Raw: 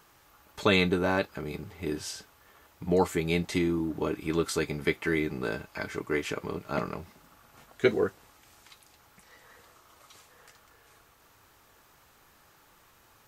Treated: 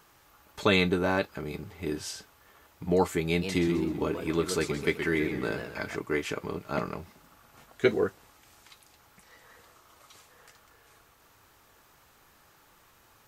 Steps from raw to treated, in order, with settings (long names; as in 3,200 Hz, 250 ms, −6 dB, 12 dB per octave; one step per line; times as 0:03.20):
0:03.28–0:05.96: feedback echo with a swinging delay time 128 ms, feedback 45%, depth 184 cents, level −8 dB